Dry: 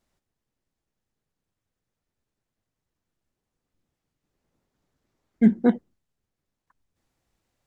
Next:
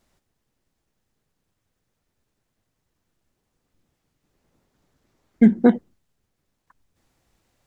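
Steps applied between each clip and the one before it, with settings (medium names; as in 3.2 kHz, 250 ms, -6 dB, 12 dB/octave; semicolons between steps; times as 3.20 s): compression, threshold -17 dBFS, peak gain reduction 6.5 dB; trim +8 dB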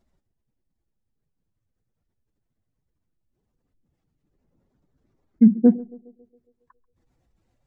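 spectral contrast enhancement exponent 1.7; band-passed feedback delay 137 ms, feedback 59%, band-pass 450 Hz, level -19.5 dB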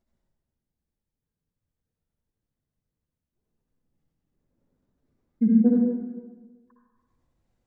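reverberation RT60 1.3 s, pre-delay 53 ms, DRR -2.5 dB; trim -8.5 dB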